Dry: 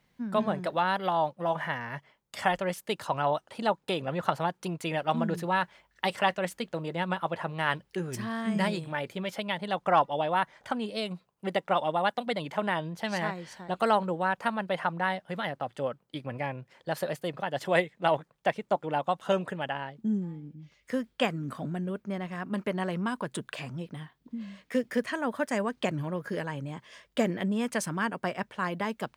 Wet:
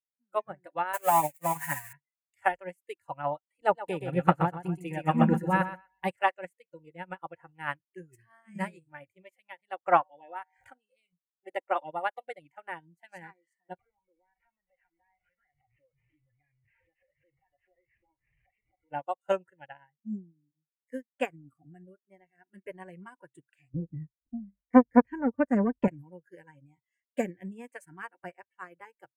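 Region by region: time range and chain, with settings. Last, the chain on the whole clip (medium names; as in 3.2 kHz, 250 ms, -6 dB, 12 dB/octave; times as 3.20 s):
0.93–1.93 s: zero-crossing glitches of -22 dBFS + expander -33 dBFS + comb 7 ms, depth 99%
3.61–6.11 s: bass shelf 240 Hz +9.5 dB + feedback delay 124 ms, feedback 43%, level -4.5 dB
9.97–11.13 s: feedback comb 84 Hz, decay 0.3 s, harmonics odd, mix 50% + swell ahead of each attack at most 55 dB/s
13.79–18.92 s: one-bit delta coder 16 kbps, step -35 dBFS + compression 5:1, threshold -39 dBFS
23.74–25.88 s: gate -55 dBFS, range -11 dB + tilt EQ -4.5 dB/octave + transformer saturation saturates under 530 Hz
whole clip: high-order bell 4.3 kHz -14.5 dB 1.1 oct; spectral noise reduction 24 dB; upward expansion 2.5:1, over -42 dBFS; trim +7 dB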